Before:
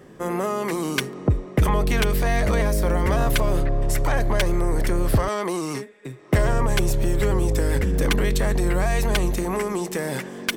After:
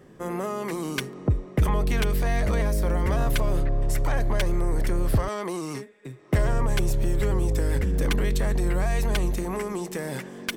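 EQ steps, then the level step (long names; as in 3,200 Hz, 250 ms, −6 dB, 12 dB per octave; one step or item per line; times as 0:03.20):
low-shelf EQ 180 Hz +4 dB
−5.5 dB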